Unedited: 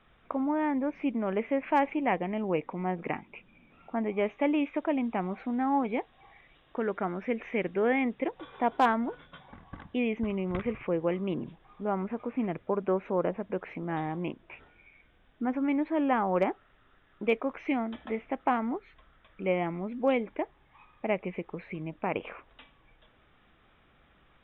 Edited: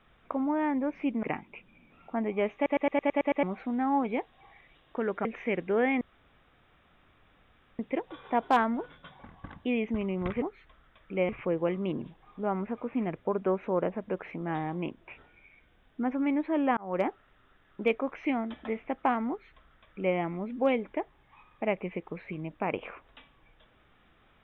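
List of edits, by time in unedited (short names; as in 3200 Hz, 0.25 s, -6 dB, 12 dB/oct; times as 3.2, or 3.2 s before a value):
1.23–3.03 cut
4.35 stutter in place 0.11 s, 8 plays
7.05–7.32 cut
8.08 insert room tone 1.78 s
16.19–16.48 fade in
18.71–19.58 copy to 10.71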